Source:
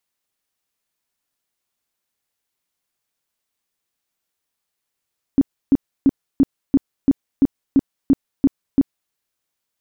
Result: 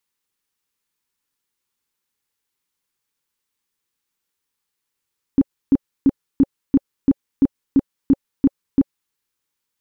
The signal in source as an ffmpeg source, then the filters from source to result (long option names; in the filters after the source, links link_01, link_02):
-f lavfi -i "aevalsrc='0.376*sin(2*PI*274*mod(t,0.34))*lt(mod(t,0.34),9/274)':duration=3.74:sample_rate=44100"
-af "asuperstop=centerf=660:order=8:qfactor=2.9"